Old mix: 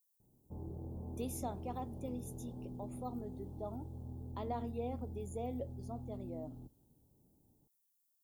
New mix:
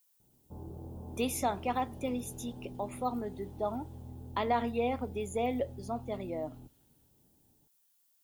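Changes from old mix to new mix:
speech +7.5 dB
master: add parametric band 2,100 Hz +13.5 dB 1.9 octaves

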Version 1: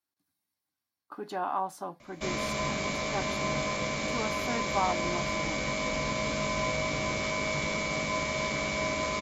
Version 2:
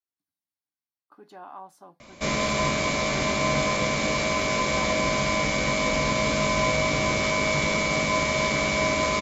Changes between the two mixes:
speech −11.0 dB
background +7.0 dB

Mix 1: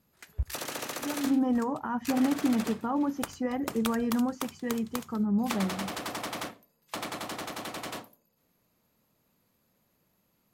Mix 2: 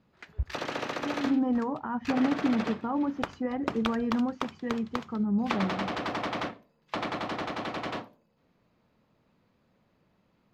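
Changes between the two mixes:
background +5.5 dB
master: add high-frequency loss of the air 220 metres

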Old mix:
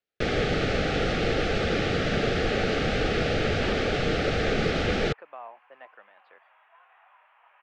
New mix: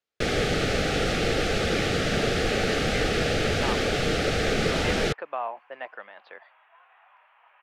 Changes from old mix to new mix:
speech +10.5 dB
master: remove high-frequency loss of the air 120 metres

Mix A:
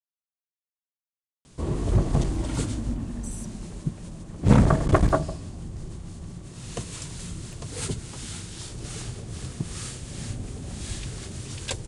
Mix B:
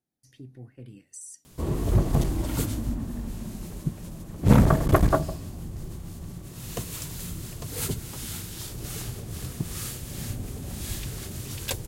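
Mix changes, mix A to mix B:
speech: entry −2.10 s
first sound: remove Butterworth low-pass 9,900 Hz 72 dB per octave

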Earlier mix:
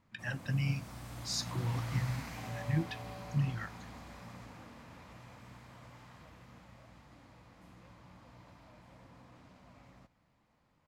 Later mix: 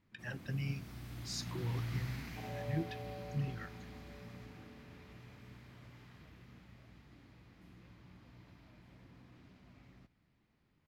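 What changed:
speech −6.0 dB
first sound: add octave-band graphic EQ 500/1,000/8,000 Hz −11/−8/−9 dB
master: add parametric band 400 Hz +10.5 dB 0.55 octaves

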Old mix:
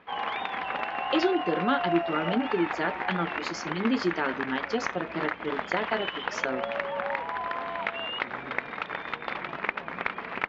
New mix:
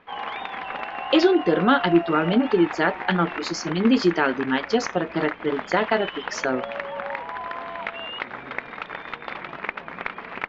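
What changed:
speech +8.0 dB
master: remove high-pass filter 47 Hz

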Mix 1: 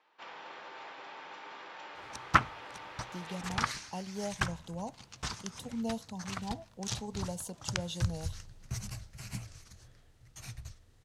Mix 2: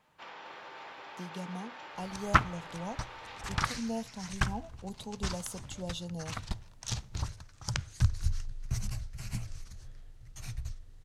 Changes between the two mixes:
speech: entry −1.95 s
second sound: remove high-pass filter 140 Hz 6 dB per octave

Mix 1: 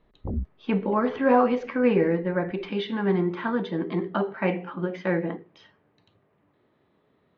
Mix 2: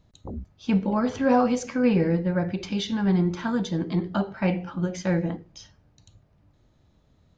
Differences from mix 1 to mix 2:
speech: remove loudspeaker in its box 220–3,300 Hz, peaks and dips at 410 Hz +8 dB, 1,100 Hz +5 dB, 1,900 Hz +5 dB
background: add spectral tilt +2 dB per octave

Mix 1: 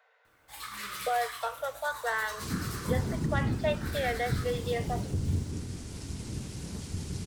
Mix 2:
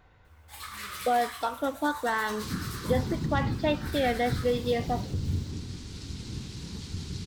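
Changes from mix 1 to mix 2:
speech: remove Chebyshev high-pass with heavy ripple 440 Hz, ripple 6 dB
second sound: add graphic EQ with 15 bands 630 Hz −10 dB, 4,000 Hz +8 dB, 10,000 Hz −10 dB

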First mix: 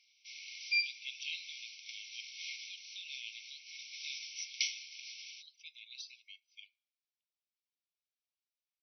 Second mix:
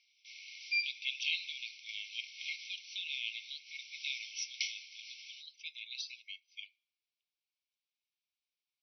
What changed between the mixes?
speech +8.5 dB
master: add high-frequency loss of the air 86 metres

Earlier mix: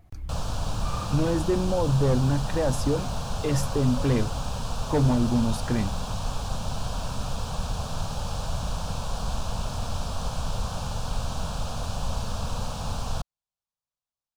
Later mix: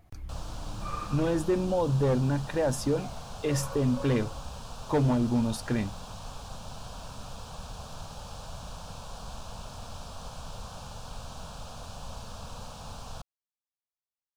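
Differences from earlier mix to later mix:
background −8.5 dB
master: add low-shelf EQ 230 Hz −5 dB

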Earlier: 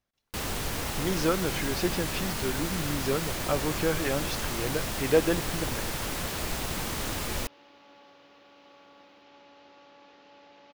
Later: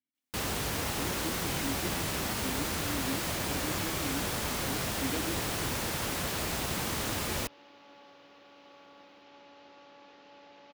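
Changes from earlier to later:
speech: add formant filter i
master: add high-pass filter 59 Hz

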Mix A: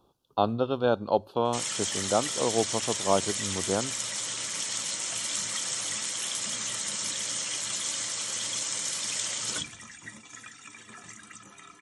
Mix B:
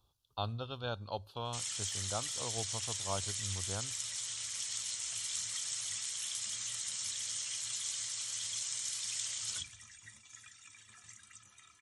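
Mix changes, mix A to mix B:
background −4.5 dB
master: add drawn EQ curve 100 Hz 0 dB, 170 Hz −15 dB, 340 Hz −20 dB, 3,900 Hz −2 dB

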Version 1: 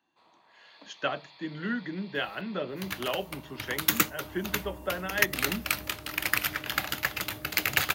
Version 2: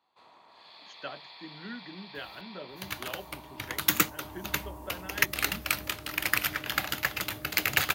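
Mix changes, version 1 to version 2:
speech −10.0 dB
first sound +5.5 dB

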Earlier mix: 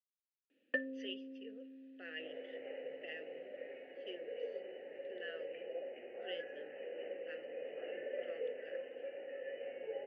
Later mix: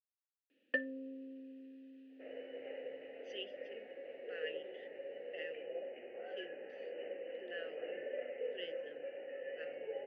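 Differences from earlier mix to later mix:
speech: entry +2.30 s
first sound: add high-shelf EQ 3,800 Hz +7 dB

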